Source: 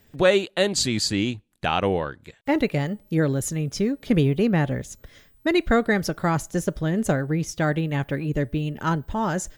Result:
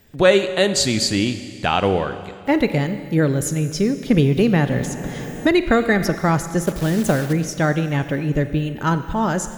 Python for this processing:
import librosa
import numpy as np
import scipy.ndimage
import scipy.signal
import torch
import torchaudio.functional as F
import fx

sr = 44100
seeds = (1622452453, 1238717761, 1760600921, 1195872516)

y = fx.quant_dither(x, sr, seeds[0], bits=6, dither='none', at=(6.65, 7.33))
y = fx.rev_schroeder(y, sr, rt60_s=2.1, comb_ms=32, drr_db=10.5)
y = fx.band_squash(y, sr, depth_pct=70, at=(4.37, 6.15))
y = F.gain(torch.from_numpy(y), 4.0).numpy()